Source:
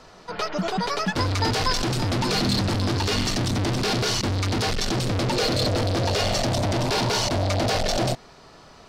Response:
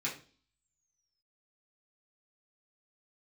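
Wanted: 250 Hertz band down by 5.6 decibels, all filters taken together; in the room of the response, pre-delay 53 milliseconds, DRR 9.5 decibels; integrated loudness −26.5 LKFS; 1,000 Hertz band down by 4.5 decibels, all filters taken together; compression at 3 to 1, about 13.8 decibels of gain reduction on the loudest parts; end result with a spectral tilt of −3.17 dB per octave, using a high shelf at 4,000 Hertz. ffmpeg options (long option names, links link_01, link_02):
-filter_complex "[0:a]equalizer=frequency=250:width_type=o:gain=-7.5,equalizer=frequency=1000:width_type=o:gain=-6,highshelf=frequency=4000:gain=7.5,acompressor=threshold=-38dB:ratio=3,asplit=2[link_01][link_02];[1:a]atrim=start_sample=2205,adelay=53[link_03];[link_02][link_03]afir=irnorm=-1:irlink=0,volume=-13.5dB[link_04];[link_01][link_04]amix=inputs=2:normalize=0,volume=8.5dB"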